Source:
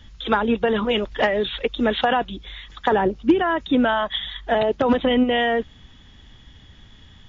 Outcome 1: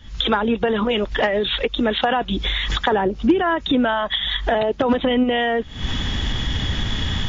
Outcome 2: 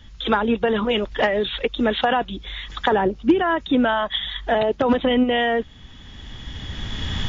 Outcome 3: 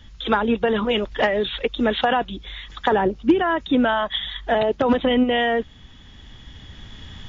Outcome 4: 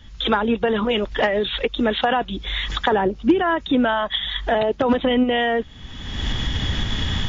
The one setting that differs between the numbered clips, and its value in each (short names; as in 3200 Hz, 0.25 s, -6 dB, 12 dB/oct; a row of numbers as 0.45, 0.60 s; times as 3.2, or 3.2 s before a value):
recorder AGC, rising by: 88, 14, 5.7, 35 dB/s